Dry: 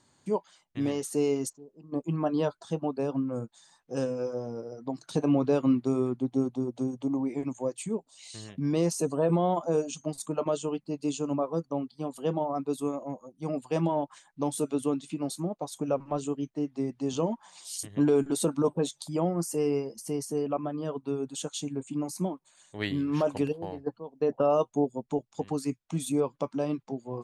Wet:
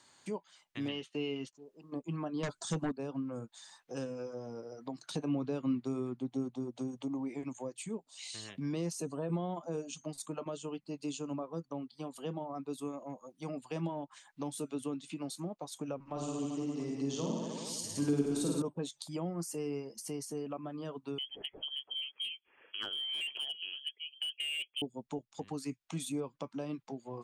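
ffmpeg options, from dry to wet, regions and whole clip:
-filter_complex "[0:a]asettb=1/sr,asplit=3[a][b][c];[a]atrim=end=0.884[d];[b]atrim=start=0.88:end=1.53,asetpts=PTS-STARTPTS,afade=t=in:d=0.004:c=qsin,afade=t=out:st=0.646:d=0.004:c=qsin,lowpass=f=3k:t=q:w=4.5,agate=range=-33dB:threshold=-42dB:ratio=3:release=100:detection=peak[e];[c]atrim=start=1.526[f];[d][e]acrossfade=d=0.004:c1=hsin:c2=qsin[g];[g][f]acrossfade=d=0.004:c1=qsin:c2=hsin,asettb=1/sr,asplit=3[h][i][j];[h]atrim=end=2.434[k];[i]atrim=start=2.43:end=2.92,asetpts=PTS-STARTPTS,afade=t=in:d=0.004:c=qsin,afade=t=out:st=0.486:d=0.004:c=qsin,aeval=exprs='0.133*sin(PI/2*2*val(0)/0.133)':c=same,equalizer=f=7.5k:w=1.2:g=13.5[l];[j]atrim=start=2.916[m];[k][l]acrossfade=d=0.004:c1=hsin:c2=qsin[n];[n][m]acrossfade=d=0.004:c1=qsin:c2=hsin,asettb=1/sr,asplit=3[o][p][q];[o]atrim=end=16.024[r];[p]atrim=start=16.02:end=18.62,asetpts=PTS-STARTPTS,afade=t=in:d=0.004:c=qsin,afade=t=out:st=2.596:d=0.004:c=qsin,equalizer=f=5.8k:w=1.4:g=5,aecho=1:1:50|105|165.5|232|305.3|385.8|474.4|571.8|679:0.794|0.631|0.501|0.398|0.316|0.251|0.2|0.158|0.126,atrim=end_sample=114660[s];[q]atrim=start=18.616[t];[r][s]acrossfade=d=0.004:c1=hsin:c2=qsin[u];[u][t]acrossfade=d=0.004:c1=qsin:c2=hsin,asettb=1/sr,asplit=3[v][w][x];[v]atrim=end=21.184[y];[w]atrim=start=21.18:end=24.82,asetpts=PTS-STARTPTS,afade=t=in:d=0.004:c=qsin,afade=t=out:st=3.636:d=0.004:c=qsin,lowpass=f=2.9k:t=q:w=0.5098,lowpass=f=2.9k:t=q:w=0.6013,lowpass=f=2.9k:t=q:w=0.9,lowpass=f=2.9k:t=q:w=2.563,afreqshift=-3400,volume=24.5dB,asoftclip=hard,volume=-24.5dB,equalizer=f=380:t=o:w=1.3:g=12.5[z];[x]atrim=start=24.816[aa];[y][z]acrossfade=d=0.004:c1=hsin:c2=qsin[ab];[ab][aa]acrossfade=d=0.004:c1=qsin:c2=hsin,equalizer=f=2.7k:w=0.45:g=5,acrossover=split=280[ac][ad];[ad]acompressor=threshold=-44dB:ratio=3[ae];[ac][ae]amix=inputs=2:normalize=0,lowshelf=f=310:g=-11.5,volume=1.5dB"

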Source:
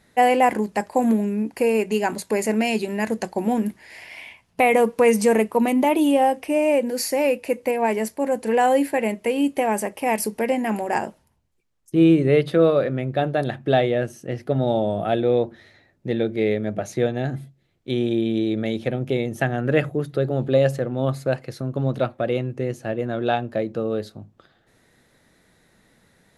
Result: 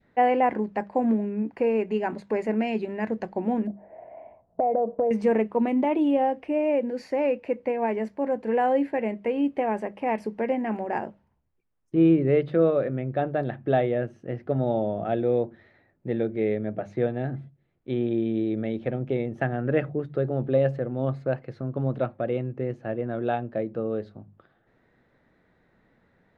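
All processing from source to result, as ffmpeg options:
-filter_complex "[0:a]asettb=1/sr,asplit=3[a][b][c];[a]atrim=end=3.674[d];[b]atrim=start=3.67:end=5.11,asetpts=PTS-STARTPTS,afade=t=in:d=0.004:c=qsin,afade=t=out:st=1.436:d=0.004:c=qsin,lowpass=f=650:t=q:w=7.1,acompressor=threshold=-18dB:ratio=4:attack=3.2:release=140:knee=1:detection=peak[e];[c]atrim=start=5.106[f];[d][e]acrossfade=d=0.004:c1=hsin:c2=qsin[g];[g][f]acrossfade=d=0.004:c1=qsin:c2=hsin,lowpass=1.9k,bandreject=f=50:t=h:w=6,bandreject=f=100:t=h:w=6,bandreject=f=150:t=h:w=6,bandreject=f=200:t=h:w=6,adynamicequalizer=threshold=0.0158:dfrequency=1100:dqfactor=1.1:tfrequency=1100:tqfactor=1.1:attack=5:release=100:ratio=0.375:range=2:mode=cutabove:tftype=bell,volume=-3.5dB"

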